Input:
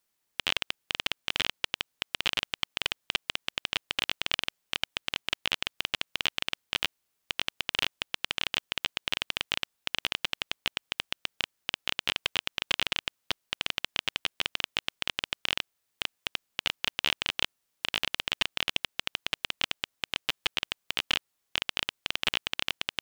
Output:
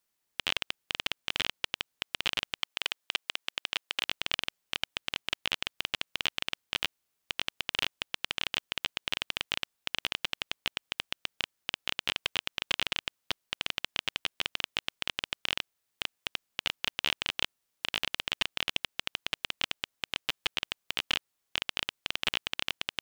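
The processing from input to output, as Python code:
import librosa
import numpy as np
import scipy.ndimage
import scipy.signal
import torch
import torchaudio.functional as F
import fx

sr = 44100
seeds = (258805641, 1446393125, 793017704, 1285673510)

y = fx.highpass(x, sr, hz=410.0, slope=6, at=(2.62, 4.04))
y = y * 10.0 ** (-2.0 / 20.0)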